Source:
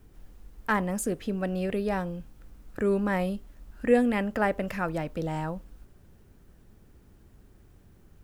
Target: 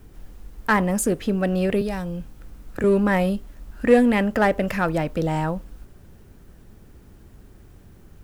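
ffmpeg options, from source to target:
ffmpeg -i in.wav -filter_complex "[0:a]asplit=2[link_01][link_02];[link_02]aeval=exprs='0.0668*(abs(mod(val(0)/0.0668+3,4)-2)-1)':channel_layout=same,volume=-12dB[link_03];[link_01][link_03]amix=inputs=2:normalize=0,asettb=1/sr,asplit=3[link_04][link_05][link_06];[link_04]atrim=end=1.814[link_07];[link_05]atrim=start=1.81:end=2.84,asetpts=PTS-STARTPTS,afade=type=in:duration=0.004:curve=qsin,afade=type=out:start_time=1.026:duration=0.004:curve=qsin,acrossover=split=160|3000[link_08][link_09][link_10];[link_09]acompressor=threshold=-33dB:ratio=6[link_11];[link_08][link_11][link_10]amix=inputs=3:normalize=0[link_12];[link_06]atrim=start=2.836[link_13];[link_07][link_12]acrossfade=duration=0.004:curve1=hsin:curve2=qsin[link_14];[link_14][link_13]acrossfade=duration=0.004:curve1=qsin:curve2=hsin,volume=6dB" out.wav

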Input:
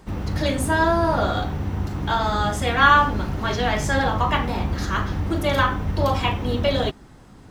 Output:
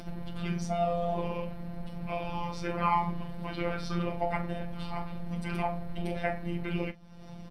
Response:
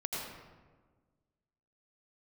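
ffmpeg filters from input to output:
-filter_complex "[0:a]superequalizer=6b=2:11b=0.708:16b=0.316,acompressor=mode=upward:threshold=-21dB:ratio=2.5,asetrate=31183,aresample=44100,atempo=1.41421,afftfilt=real='hypot(re,im)*cos(PI*b)':imag='0':win_size=1024:overlap=0.75,asplit=2[link_01][link_02];[link_02]aecho=0:1:13|39:0.168|0.168[link_03];[link_01][link_03]amix=inputs=2:normalize=0,volume=-7.5dB"

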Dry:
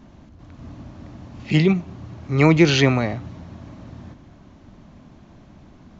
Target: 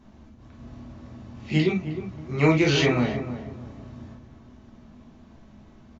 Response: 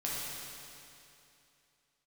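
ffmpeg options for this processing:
-filter_complex "[0:a]asplit=2[link_01][link_02];[link_02]adelay=311,lowpass=frequency=1200:poles=1,volume=-10dB,asplit=2[link_03][link_04];[link_04]adelay=311,lowpass=frequency=1200:poles=1,volume=0.33,asplit=2[link_05][link_06];[link_06]adelay=311,lowpass=frequency=1200:poles=1,volume=0.33,asplit=2[link_07][link_08];[link_08]adelay=311,lowpass=frequency=1200:poles=1,volume=0.33[link_09];[link_01][link_03][link_05][link_07][link_09]amix=inputs=5:normalize=0[link_10];[1:a]atrim=start_sample=2205,atrim=end_sample=3969,asetrate=66150,aresample=44100[link_11];[link_10][link_11]afir=irnorm=-1:irlink=0,volume=-2dB"

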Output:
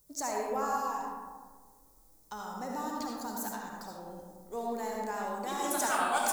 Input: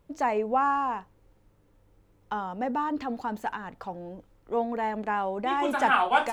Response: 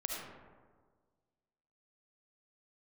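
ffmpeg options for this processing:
-filter_complex "[0:a]highshelf=frequency=8800:gain=4.5,acrossover=split=560[link_01][link_02];[link_02]aexciter=amount=9:drive=7.6:freq=4300[link_03];[link_01][link_03]amix=inputs=2:normalize=0[link_04];[1:a]atrim=start_sample=2205[link_05];[link_04][link_05]afir=irnorm=-1:irlink=0,volume=-9dB"

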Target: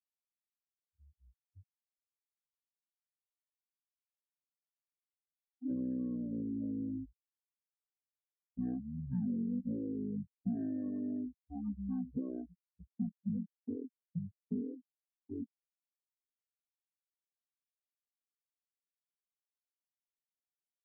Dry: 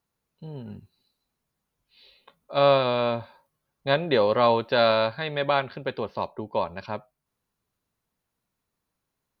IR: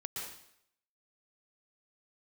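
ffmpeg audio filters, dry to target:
-af "afftfilt=real='re*gte(hypot(re,im),0.141)':imag='im*gte(hypot(re,im),0.141)':win_size=1024:overlap=0.75,asetrate=19889,aresample=44100,acompressor=threshold=-35dB:ratio=6,bandpass=frequency=200:width_type=q:width=1.7:csg=0,agate=range=-33dB:threshold=-48dB:ratio=3:detection=peak,volume=2.5dB"

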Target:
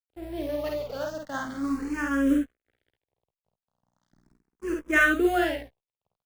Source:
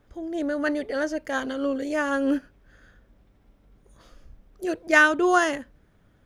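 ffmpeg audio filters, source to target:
ffmpeg -i in.wav -filter_complex "[0:a]lowpass=7300,equalizer=frequency=240:width_type=o:width=1.3:gain=4.5,acrusher=bits=6:mode=log:mix=0:aa=0.000001,acrossover=split=110[link_01][link_02];[link_01]asoftclip=type=tanh:threshold=-39.5dB[link_03];[link_03][link_02]amix=inputs=2:normalize=0,aeval=exprs='val(0)+0.00794*(sin(2*PI*60*n/s)+sin(2*PI*2*60*n/s)/2+sin(2*PI*3*60*n/s)/3+sin(2*PI*4*60*n/s)/4+sin(2*PI*5*60*n/s)/5)':channel_layout=same,aeval=exprs='sgn(val(0))*max(abs(val(0))-0.0141,0)':channel_layout=same,aecho=1:1:51|68:0.708|0.316,asplit=2[link_04][link_05];[link_05]afreqshift=0.38[link_06];[link_04][link_06]amix=inputs=2:normalize=1,volume=-3dB" out.wav

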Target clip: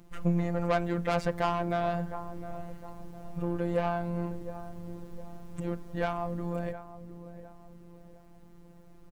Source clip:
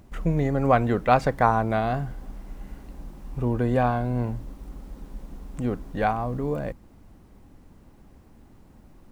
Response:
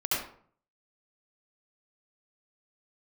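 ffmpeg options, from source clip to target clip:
-filter_complex "[0:a]asplit=2[link_01][link_02];[link_02]adelay=709,lowpass=frequency=890:poles=1,volume=-13dB,asplit=2[link_03][link_04];[link_04]adelay=709,lowpass=frequency=890:poles=1,volume=0.47,asplit=2[link_05][link_06];[link_06]adelay=709,lowpass=frequency=890:poles=1,volume=0.47,asplit=2[link_07][link_08];[link_08]adelay=709,lowpass=frequency=890:poles=1,volume=0.47,asplit=2[link_09][link_10];[link_10]adelay=709,lowpass=frequency=890:poles=1,volume=0.47[link_11];[link_01][link_03][link_05][link_07][link_09][link_11]amix=inputs=6:normalize=0,asoftclip=type=tanh:threshold=-17.5dB,afftfilt=real='hypot(re,im)*cos(PI*b)':imag='0':win_size=1024:overlap=0.75"

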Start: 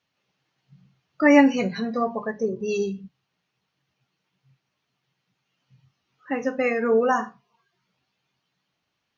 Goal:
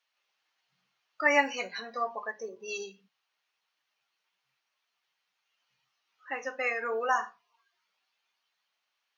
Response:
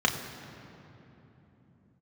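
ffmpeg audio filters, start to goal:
-af "highpass=840,volume=-2dB"

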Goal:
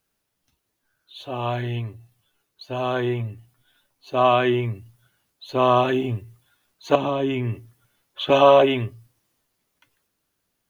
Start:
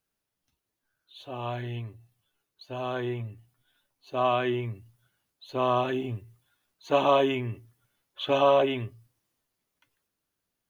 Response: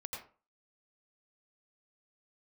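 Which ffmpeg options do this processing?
-filter_complex "[0:a]asettb=1/sr,asplit=3[link_01][link_02][link_03];[link_01]atrim=end=6.954[link_04];[link_02]atrim=start=6.95:end=8.3,asetpts=PTS-STARTPTS,afade=type=in:duration=0.004:curve=qsin,afade=type=out:start_time=1.346:duration=0.004:curve=qsin,acrossover=split=290[link_05][link_06];[link_06]acompressor=threshold=-33dB:ratio=5[link_07];[link_05][link_07]amix=inputs=2:normalize=0[link_08];[link_03]atrim=start=8.296[link_09];[link_04][link_08]acrossfade=duration=0.004:curve1=hsin:curve2=qsin[link_10];[link_10][link_09]acrossfade=duration=0.004:curve1=qsin:curve2=hsin,volume=7.5dB"

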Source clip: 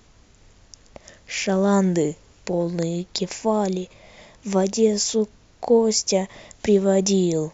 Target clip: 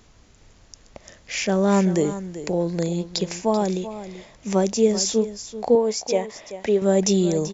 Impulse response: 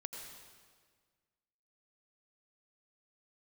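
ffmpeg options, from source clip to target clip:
-filter_complex "[0:a]asettb=1/sr,asplit=3[link_01][link_02][link_03];[link_01]atrim=end=5.754[link_04];[link_02]atrim=start=5.75:end=6.82,asetpts=PTS-STARTPTS,afade=type=in:duration=0.004:curve=qsin,afade=type=out:start_time=1.066:duration=0.004:curve=qsin,bass=frequency=250:gain=-11,treble=frequency=4000:gain=-9[link_05];[link_03]atrim=start=6.816[link_06];[link_04][link_05]acrossfade=duration=0.004:curve1=hsin:curve2=qsin[link_07];[link_07][link_06]acrossfade=duration=0.004:curve1=qsin:curve2=hsin,aecho=1:1:386:0.224"

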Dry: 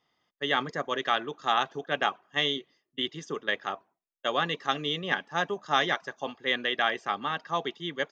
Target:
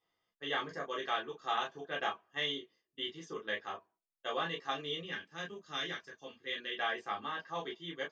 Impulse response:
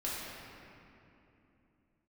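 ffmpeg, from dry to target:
-filter_complex "[0:a]asettb=1/sr,asplit=3[link_01][link_02][link_03];[link_01]atrim=end=5.014[link_04];[link_02]atrim=start=5.01:end=6.76,asetpts=PTS-STARTPTS,afade=type=in:duration=0.004:curve=qsin,afade=type=out:start_time=1.746:duration=0.004:curve=qsin,equalizer=frequency=800:width_type=o:width=1.5:gain=-13[link_05];[link_03]atrim=start=6.756[link_06];[link_04][link_05]acrossfade=duration=0.004:curve1=hsin:curve2=qsin[link_07];[link_07][link_06]acrossfade=duration=0.004:curve1=qsin:curve2=hsin[link_08];[1:a]atrim=start_sample=2205,atrim=end_sample=3528,asetrate=74970,aresample=44100[link_09];[link_08][link_09]afir=irnorm=-1:irlink=0,volume=-4.5dB"

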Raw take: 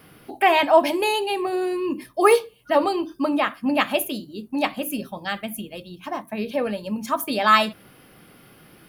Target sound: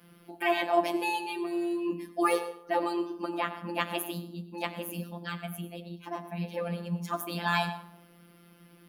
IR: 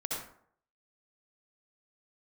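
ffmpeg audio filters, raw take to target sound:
-filter_complex "[0:a]asplit=2[link_01][link_02];[1:a]atrim=start_sample=2205,asetrate=35721,aresample=44100,adelay=9[link_03];[link_02][link_03]afir=irnorm=-1:irlink=0,volume=-15.5dB[link_04];[link_01][link_04]amix=inputs=2:normalize=0,afftfilt=real='hypot(re,im)*cos(PI*b)':imag='0':win_size=1024:overlap=0.75,lowshelf=frequency=140:width_type=q:width=3:gain=-7,volume=-6dB"

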